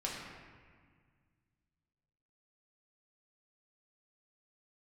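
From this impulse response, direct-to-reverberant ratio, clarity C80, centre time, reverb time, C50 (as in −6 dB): −4.5 dB, 2.5 dB, 89 ms, 1.7 s, 0.5 dB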